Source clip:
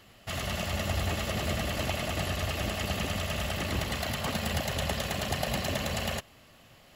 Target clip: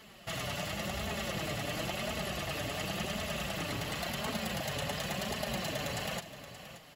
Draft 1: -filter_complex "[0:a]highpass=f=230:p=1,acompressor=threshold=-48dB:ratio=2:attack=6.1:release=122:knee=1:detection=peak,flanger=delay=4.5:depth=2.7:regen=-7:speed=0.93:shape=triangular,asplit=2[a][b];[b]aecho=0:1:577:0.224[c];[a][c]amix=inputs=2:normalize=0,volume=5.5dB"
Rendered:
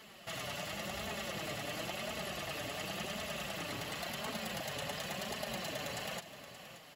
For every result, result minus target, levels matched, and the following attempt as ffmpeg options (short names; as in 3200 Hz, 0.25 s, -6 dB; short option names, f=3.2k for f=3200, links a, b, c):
125 Hz band -4.0 dB; compressor: peak gain reduction +3.5 dB
-filter_complex "[0:a]highpass=f=67:p=1,acompressor=threshold=-48dB:ratio=2:attack=6.1:release=122:knee=1:detection=peak,flanger=delay=4.5:depth=2.7:regen=-7:speed=0.93:shape=triangular,asplit=2[a][b];[b]aecho=0:1:577:0.224[c];[a][c]amix=inputs=2:normalize=0,volume=5.5dB"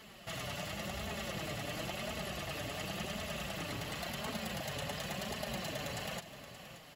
compressor: peak gain reduction +4 dB
-filter_complex "[0:a]highpass=f=67:p=1,acompressor=threshold=-40dB:ratio=2:attack=6.1:release=122:knee=1:detection=peak,flanger=delay=4.5:depth=2.7:regen=-7:speed=0.93:shape=triangular,asplit=2[a][b];[b]aecho=0:1:577:0.224[c];[a][c]amix=inputs=2:normalize=0,volume=5.5dB"